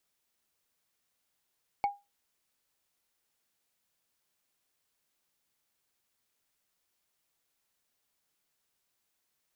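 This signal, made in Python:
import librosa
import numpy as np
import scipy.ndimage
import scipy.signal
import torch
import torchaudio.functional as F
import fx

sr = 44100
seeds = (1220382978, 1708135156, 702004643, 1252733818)

y = fx.strike_wood(sr, length_s=0.45, level_db=-21.5, body='bar', hz=810.0, decay_s=0.23, tilt_db=11.0, modes=5)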